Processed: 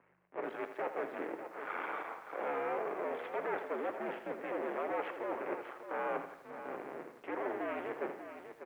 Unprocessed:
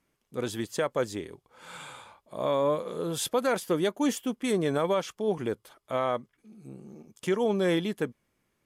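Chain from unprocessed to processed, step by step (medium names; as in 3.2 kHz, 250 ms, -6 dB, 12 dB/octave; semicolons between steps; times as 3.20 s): cycle switcher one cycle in 2, muted; hum 50 Hz, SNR 23 dB; saturation -29.5 dBFS, distortion -8 dB; reverse; compression 6:1, threshold -44 dBFS, peak gain reduction 11.5 dB; reverse; flange 0.76 Hz, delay 5.5 ms, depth 5.3 ms, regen -72%; mistuned SSB -71 Hz 430–2300 Hz; on a send: delay 596 ms -10 dB; on the sum: bit-crushed delay 82 ms, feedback 55%, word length 13-bit, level -10 dB; trim +16 dB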